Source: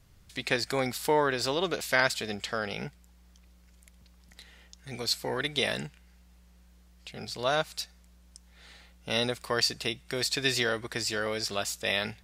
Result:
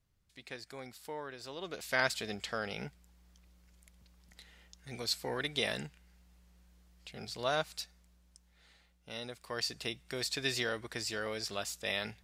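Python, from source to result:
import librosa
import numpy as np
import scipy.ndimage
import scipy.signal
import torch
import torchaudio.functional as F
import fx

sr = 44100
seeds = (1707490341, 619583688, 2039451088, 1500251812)

y = fx.gain(x, sr, db=fx.line((1.43, -17.5), (2.03, -5.0), (7.7, -5.0), (9.21, -15.0), (9.82, -6.5)))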